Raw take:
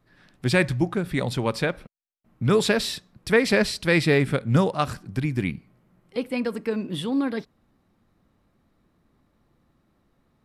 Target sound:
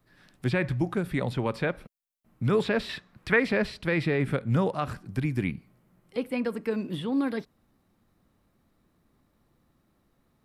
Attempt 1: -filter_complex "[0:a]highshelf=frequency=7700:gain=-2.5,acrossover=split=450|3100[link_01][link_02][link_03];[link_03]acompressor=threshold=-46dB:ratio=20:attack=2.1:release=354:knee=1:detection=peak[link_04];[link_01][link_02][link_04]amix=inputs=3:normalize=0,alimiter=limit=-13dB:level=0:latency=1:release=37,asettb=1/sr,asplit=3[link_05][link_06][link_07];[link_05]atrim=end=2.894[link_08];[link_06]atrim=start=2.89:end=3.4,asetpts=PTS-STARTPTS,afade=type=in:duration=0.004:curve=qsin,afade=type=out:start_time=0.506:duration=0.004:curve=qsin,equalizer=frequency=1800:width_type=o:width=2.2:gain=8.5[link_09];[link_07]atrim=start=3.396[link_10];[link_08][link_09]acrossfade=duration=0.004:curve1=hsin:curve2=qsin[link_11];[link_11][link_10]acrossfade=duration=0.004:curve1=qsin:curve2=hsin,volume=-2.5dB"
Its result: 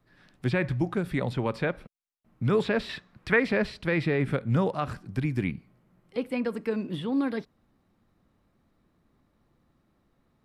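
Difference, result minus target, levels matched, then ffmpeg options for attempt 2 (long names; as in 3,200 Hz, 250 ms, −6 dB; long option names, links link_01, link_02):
8,000 Hz band −2.5 dB
-filter_complex "[0:a]highshelf=frequency=7700:gain=9,acrossover=split=450|3100[link_01][link_02][link_03];[link_03]acompressor=threshold=-46dB:ratio=20:attack=2.1:release=354:knee=1:detection=peak[link_04];[link_01][link_02][link_04]amix=inputs=3:normalize=0,alimiter=limit=-13dB:level=0:latency=1:release=37,asettb=1/sr,asplit=3[link_05][link_06][link_07];[link_05]atrim=end=2.894[link_08];[link_06]atrim=start=2.89:end=3.4,asetpts=PTS-STARTPTS,afade=type=in:duration=0.004:curve=qsin,afade=type=out:start_time=0.506:duration=0.004:curve=qsin,equalizer=frequency=1800:width_type=o:width=2.2:gain=8.5[link_09];[link_07]atrim=start=3.396[link_10];[link_08][link_09]acrossfade=duration=0.004:curve1=hsin:curve2=qsin[link_11];[link_11][link_10]acrossfade=duration=0.004:curve1=qsin:curve2=hsin,volume=-2.5dB"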